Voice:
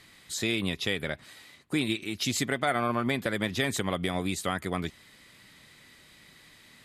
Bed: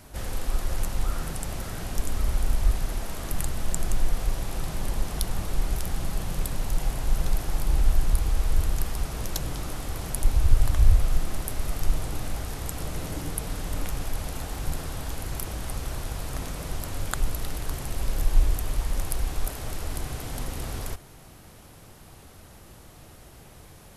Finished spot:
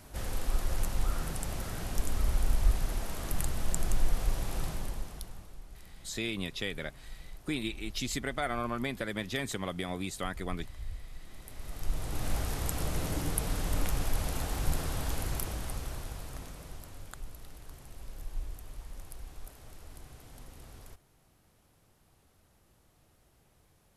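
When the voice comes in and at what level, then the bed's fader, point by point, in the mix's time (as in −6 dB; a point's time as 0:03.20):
5.75 s, −6.0 dB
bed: 0:04.65 −3.5 dB
0:05.62 −23 dB
0:11.16 −23 dB
0:12.32 −0.5 dB
0:15.19 −0.5 dB
0:17.22 −17.5 dB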